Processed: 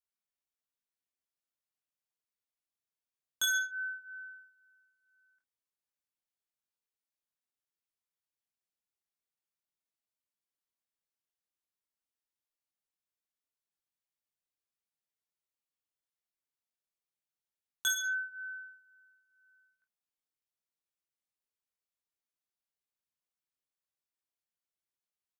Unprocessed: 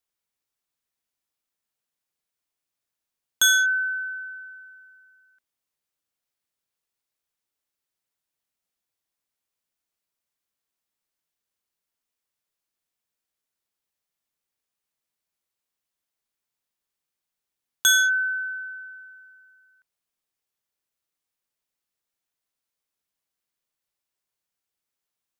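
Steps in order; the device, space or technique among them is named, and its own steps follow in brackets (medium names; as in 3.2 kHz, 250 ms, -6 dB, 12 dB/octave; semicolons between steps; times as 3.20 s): double-tracked vocal (doubling 32 ms -10.5 dB; chorus 0.21 Hz, delay 20 ms, depth 3.3 ms); trim -8.5 dB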